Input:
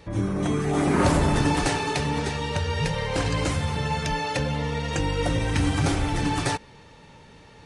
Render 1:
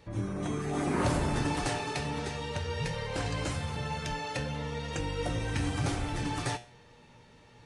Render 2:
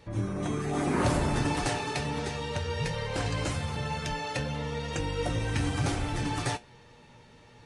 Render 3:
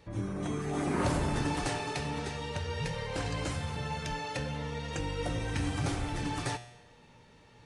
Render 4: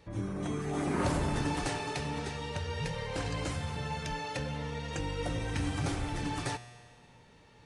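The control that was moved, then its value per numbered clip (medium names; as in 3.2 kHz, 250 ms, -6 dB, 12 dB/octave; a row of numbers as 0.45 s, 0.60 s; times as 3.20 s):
feedback comb, decay: 0.38 s, 0.16 s, 0.81 s, 1.7 s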